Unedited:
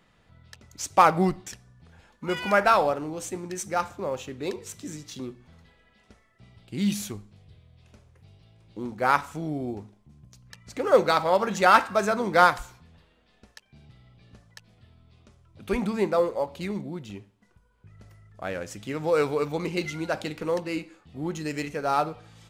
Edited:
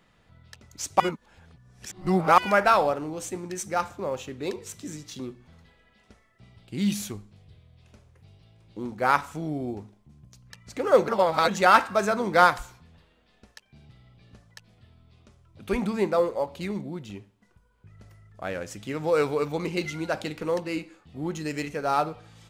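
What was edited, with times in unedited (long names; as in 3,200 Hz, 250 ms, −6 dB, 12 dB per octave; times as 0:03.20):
0:01.00–0:02.38: reverse
0:11.08–0:11.48: reverse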